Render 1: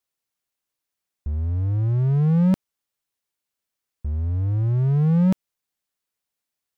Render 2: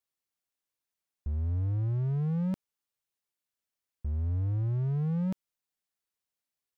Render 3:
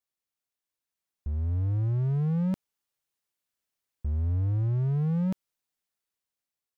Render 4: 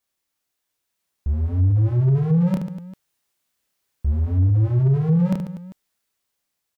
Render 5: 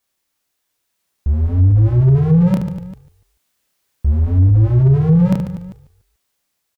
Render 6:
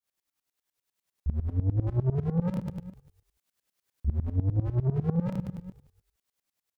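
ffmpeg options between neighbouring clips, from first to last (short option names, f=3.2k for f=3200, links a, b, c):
-af "alimiter=limit=-18dB:level=0:latency=1:release=39,volume=-6dB"
-af "dynaudnorm=f=350:g=7:m=5dB,volume=-2dB"
-af "aecho=1:1:30|75|142.5|243.8|395.6:0.631|0.398|0.251|0.158|0.1,aeval=exprs='0.211*sin(PI/2*1.78*val(0)/0.211)':c=same"
-filter_complex "[0:a]asplit=4[a][b][c][d];[b]adelay=145,afreqshift=-44,volume=-16.5dB[e];[c]adelay=290,afreqshift=-88,volume=-25.6dB[f];[d]adelay=435,afreqshift=-132,volume=-34.7dB[g];[a][e][f][g]amix=inputs=4:normalize=0,volume=6dB"
-af "asoftclip=type=tanh:threshold=-13dB,aeval=exprs='val(0)*pow(10,-19*if(lt(mod(-10*n/s,1),2*abs(-10)/1000),1-mod(-10*n/s,1)/(2*abs(-10)/1000),(mod(-10*n/s,1)-2*abs(-10)/1000)/(1-2*abs(-10)/1000))/20)':c=same,volume=-4.5dB"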